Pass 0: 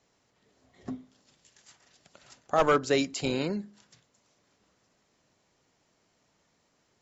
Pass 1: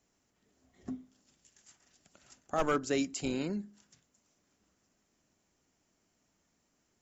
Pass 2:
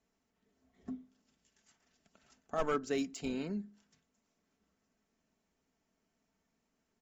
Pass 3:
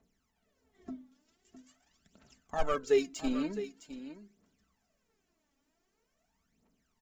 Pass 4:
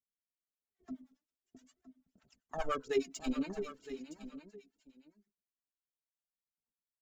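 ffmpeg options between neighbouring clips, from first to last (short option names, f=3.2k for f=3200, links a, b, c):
-af "equalizer=f=125:t=o:w=1:g=-8,equalizer=f=500:t=o:w=1:g=-8,equalizer=f=1k:t=o:w=1:g=-7,equalizer=f=2k:t=o:w=1:g=-5,equalizer=f=4k:t=o:w=1:g=-9,volume=1dB"
-af "aecho=1:1:4.5:0.43,adynamicsmooth=sensitivity=5:basefreq=5.8k,volume=-4.5dB"
-af "aphaser=in_gain=1:out_gain=1:delay=3.7:decay=0.73:speed=0.45:type=triangular,aecho=1:1:660:0.237"
-filter_complex "[0:a]agate=range=-33dB:threshold=-56dB:ratio=3:detection=peak,acrossover=split=650[a][b];[a]aeval=exprs='val(0)*(1-1/2+1/2*cos(2*PI*9.7*n/s))':c=same[c];[b]aeval=exprs='val(0)*(1-1/2-1/2*cos(2*PI*9.7*n/s))':c=same[d];[c][d]amix=inputs=2:normalize=0,aecho=1:1:964:0.2,volume=1dB"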